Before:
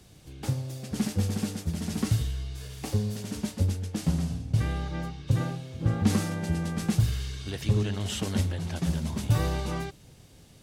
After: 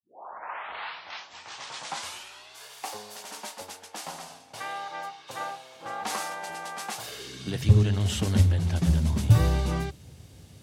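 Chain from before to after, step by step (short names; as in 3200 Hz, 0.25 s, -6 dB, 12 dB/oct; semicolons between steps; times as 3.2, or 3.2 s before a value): tape start at the beginning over 2.68 s; high-pass sweep 840 Hz -> 76 Hz, 6.98–7.72; gain +1.5 dB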